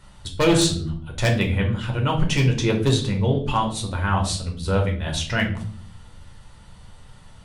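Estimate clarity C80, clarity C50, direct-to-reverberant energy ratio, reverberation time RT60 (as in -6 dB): 13.5 dB, 8.5 dB, 0.5 dB, 0.50 s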